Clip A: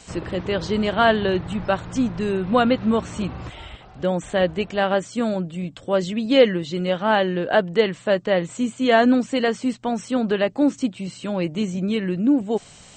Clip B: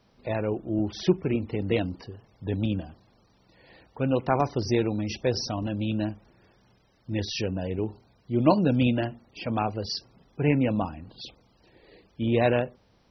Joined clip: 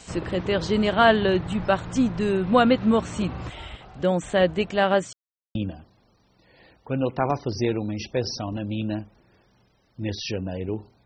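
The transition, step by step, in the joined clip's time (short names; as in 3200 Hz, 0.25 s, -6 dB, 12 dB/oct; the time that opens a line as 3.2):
clip A
5.13–5.55 mute
5.55 switch to clip B from 2.65 s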